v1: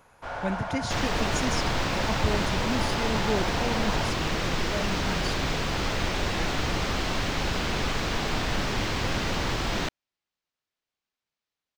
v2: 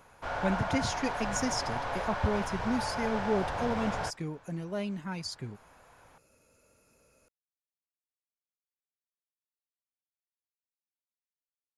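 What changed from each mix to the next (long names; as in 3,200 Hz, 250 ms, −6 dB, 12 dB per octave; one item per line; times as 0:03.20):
second sound: muted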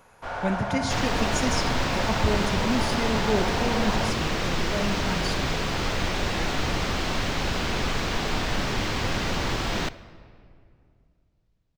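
second sound: unmuted
reverb: on, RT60 2.4 s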